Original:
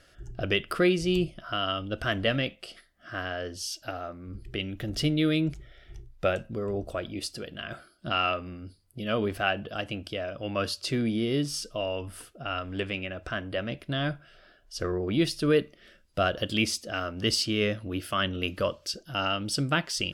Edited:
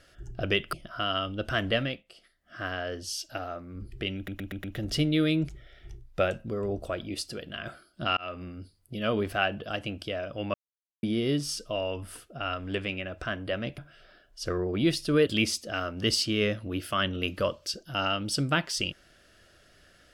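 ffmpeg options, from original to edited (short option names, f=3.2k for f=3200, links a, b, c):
-filter_complex "[0:a]asplit=13[a][b][c][d][e][f][g][h][i][j][k][l][m];[a]atrim=end=0.732[n];[b]atrim=start=1.258:end=2.58,asetpts=PTS-STARTPTS,afade=t=out:st=0.992:d=0.33:silence=0.298538[o];[c]atrim=start=2.58:end=2.78,asetpts=PTS-STARTPTS,volume=-10.5dB[p];[d]atrim=start=2.78:end=4.812,asetpts=PTS-STARTPTS,afade=t=in:d=0.33:silence=0.298538[q];[e]atrim=start=4.688:end=4.812[r];[f]atrim=start=4.688:end=4.812[s];[g]atrim=start=4.688:end=4.812[t];[h]atrim=start=4.688:end=8.22,asetpts=PTS-STARTPTS,afade=t=out:st=3.528:d=0.004:c=hsin[u];[i]atrim=start=8.22:end=10.59,asetpts=PTS-STARTPTS,afade=t=in:d=0.25,afade=t=out:st=2.366:d=0.004:c=hsin[v];[j]atrim=start=10.59:end=11.08,asetpts=PTS-STARTPTS,volume=0[w];[k]atrim=start=11.08:end=13.832,asetpts=PTS-STARTPTS,afade=t=in:d=0.004:c=hsin[x];[l]atrim=start=14.118:end=15.612[y];[m]atrim=start=16.468[z];[o][p][q]concat=n=3:v=0:a=1[aa];[n][aa]acrossfade=d=0.004:c1=hsin:c2=hsin[ab];[ab][r]acrossfade=d=0.004:c1=hsin:c2=hsin[ac];[ac][s]acrossfade=d=0.004:c1=hsin:c2=hsin[ad];[ad][t]acrossfade=d=0.004:c1=hsin:c2=hsin[ae];[u][v][w][x]concat=n=4:v=0:a=1[af];[ae][af]acrossfade=d=0.004:c1=hsin:c2=hsin[ag];[ag][y]acrossfade=d=0.004:c1=hsin:c2=hsin[ah];[ah][z]acrossfade=d=0.004:c1=hsin:c2=hsin"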